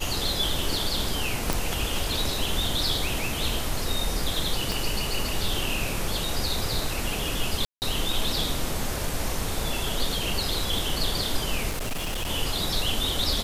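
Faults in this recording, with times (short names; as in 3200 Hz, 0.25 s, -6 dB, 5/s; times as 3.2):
1.53 pop
4.72 pop
7.65–7.82 gap 0.169 s
11.69–12.3 clipped -25.5 dBFS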